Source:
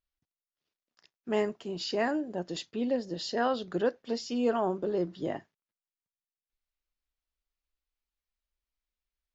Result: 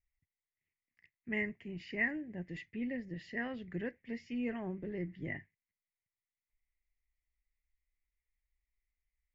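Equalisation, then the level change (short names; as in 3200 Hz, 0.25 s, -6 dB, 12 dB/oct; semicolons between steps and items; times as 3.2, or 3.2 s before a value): EQ curve 100 Hz 0 dB, 460 Hz -20 dB, 690 Hz -23 dB, 1400 Hz -25 dB, 2000 Hz +5 dB, 3700 Hz -29 dB; +5.5 dB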